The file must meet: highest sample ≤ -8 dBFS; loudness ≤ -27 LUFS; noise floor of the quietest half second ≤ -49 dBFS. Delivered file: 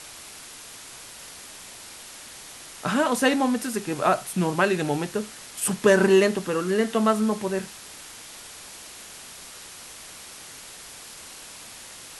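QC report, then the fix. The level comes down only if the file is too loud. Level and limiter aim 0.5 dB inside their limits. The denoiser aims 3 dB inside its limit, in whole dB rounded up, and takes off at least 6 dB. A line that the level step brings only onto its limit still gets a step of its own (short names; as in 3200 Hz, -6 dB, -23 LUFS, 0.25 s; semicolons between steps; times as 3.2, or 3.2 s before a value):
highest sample -6.0 dBFS: fail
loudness -23.5 LUFS: fail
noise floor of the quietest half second -43 dBFS: fail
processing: denoiser 6 dB, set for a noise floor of -43 dBFS; gain -4 dB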